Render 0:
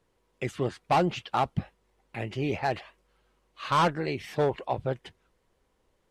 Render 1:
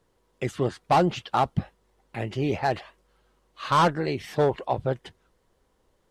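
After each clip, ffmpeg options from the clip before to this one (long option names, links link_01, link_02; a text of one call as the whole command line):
ffmpeg -i in.wav -af "equalizer=frequency=2400:width_type=o:width=0.56:gain=-4.5,volume=3.5dB" out.wav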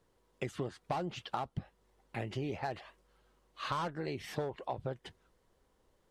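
ffmpeg -i in.wav -af "acompressor=threshold=-29dB:ratio=12,volume=-4dB" out.wav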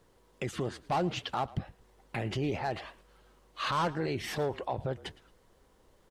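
ffmpeg -i in.wav -filter_complex "[0:a]alimiter=level_in=7dB:limit=-24dB:level=0:latency=1:release=17,volume=-7dB,asplit=3[link_01][link_02][link_03];[link_02]adelay=111,afreqshift=-45,volume=-20dB[link_04];[link_03]adelay=222,afreqshift=-90,volume=-30.2dB[link_05];[link_01][link_04][link_05]amix=inputs=3:normalize=0,volume=8dB" out.wav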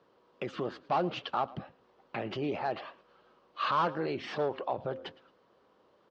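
ffmpeg -i in.wav -af "highpass=200,equalizer=frequency=580:width_type=q:width=4:gain=3,equalizer=frequency=1200:width_type=q:width=4:gain=5,equalizer=frequency=2000:width_type=q:width=4:gain=-5,equalizer=frequency=3700:width_type=q:width=4:gain=-3,lowpass=frequency=4400:width=0.5412,lowpass=frequency=4400:width=1.3066,bandreject=frequency=263.7:width_type=h:width=4,bandreject=frequency=527.4:width_type=h:width=4" out.wav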